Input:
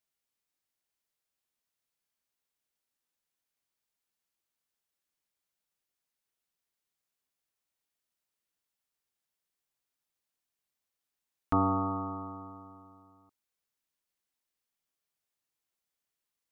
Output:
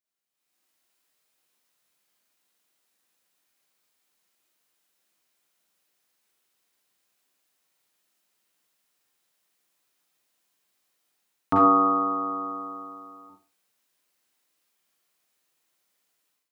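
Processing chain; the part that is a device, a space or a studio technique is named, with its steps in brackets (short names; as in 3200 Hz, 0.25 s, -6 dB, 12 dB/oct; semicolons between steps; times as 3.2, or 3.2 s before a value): far laptop microphone (reverb RT60 0.40 s, pre-delay 36 ms, DRR -1 dB; HPF 150 Hz 12 dB/oct; AGC gain up to 16 dB); gain -6 dB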